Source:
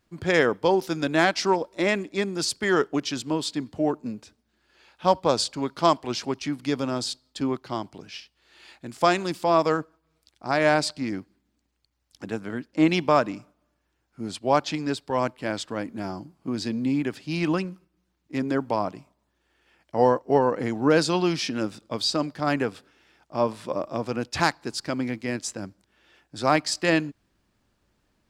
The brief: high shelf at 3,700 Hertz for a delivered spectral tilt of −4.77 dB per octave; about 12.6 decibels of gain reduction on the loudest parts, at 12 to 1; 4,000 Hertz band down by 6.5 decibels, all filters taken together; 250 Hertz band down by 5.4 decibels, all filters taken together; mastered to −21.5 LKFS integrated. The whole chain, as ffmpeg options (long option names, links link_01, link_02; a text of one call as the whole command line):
ffmpeg -i in.wav -af "equalizer=frequency=250:width_type=o:gain=-7.5,highshelf=frequency=3700:gain=-6,equalizer=frequency=4000:width_type=o:gain=-4,acompressor=threshold=-28dB:ratio=12,volume=14dB" out.wav